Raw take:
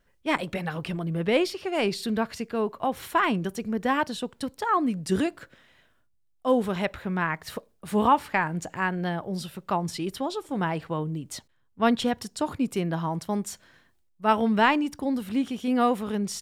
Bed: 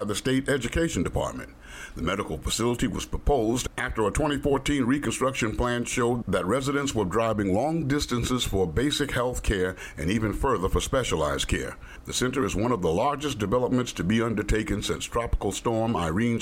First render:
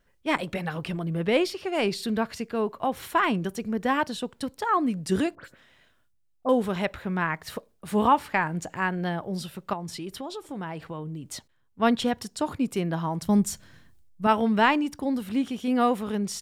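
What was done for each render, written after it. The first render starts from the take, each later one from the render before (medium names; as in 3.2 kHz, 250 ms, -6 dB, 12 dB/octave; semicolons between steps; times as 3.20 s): 5.35–6.49 s: phase dispersion highs, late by 74 ms, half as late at 2.9 kHz; 9.73–11.25 s: compression 2.5:1, threshold -34 dBFS; 13.22–14.27 s: tone controls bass +13 dB, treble +5 dB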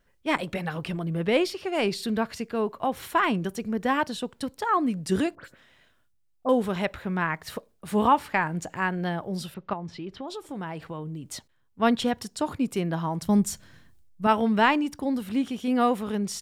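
9.54–10.28 s: distance through air 210 m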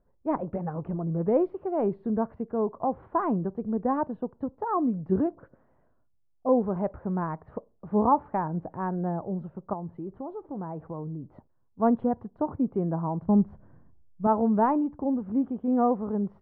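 low-pass 1 kHz 24 dB/octave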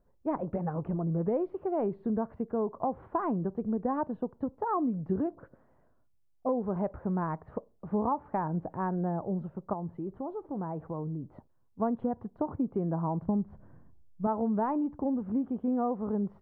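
compression 6:1, threshold -26 dBFS, peak gain reduction 10 dB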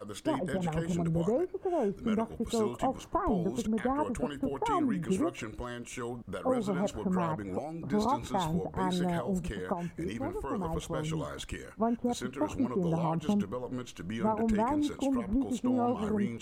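add bed -13.5 dB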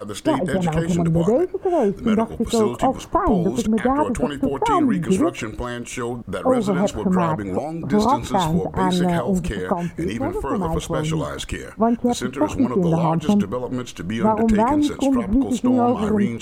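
trim +11.5 dB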